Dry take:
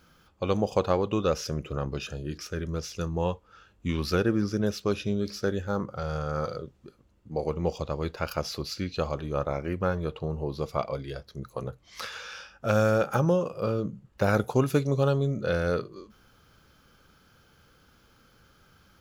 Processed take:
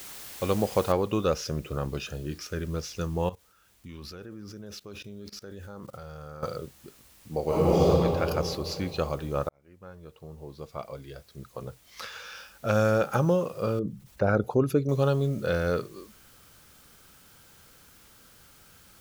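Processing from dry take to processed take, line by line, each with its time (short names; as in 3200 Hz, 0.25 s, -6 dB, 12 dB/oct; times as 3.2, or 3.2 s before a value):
0.92 noise floor step -43 dB -57 dB
3.29–6.43 level quantiser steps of 21 dB
7.46–7.88 reverb throw, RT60 2.9 s, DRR -10 dB
9.49–12.94 fade in
13.79–14.89 formant sharpening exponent 1.5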